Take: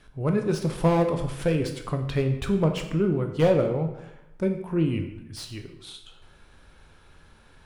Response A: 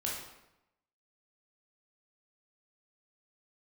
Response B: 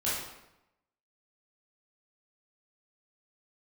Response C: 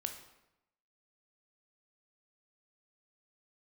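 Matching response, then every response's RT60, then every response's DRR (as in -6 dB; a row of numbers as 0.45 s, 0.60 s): C; 0.90 s, 0.90 s, 0.90 s; -4.5 dB, -10.0 dB, 5.0 dB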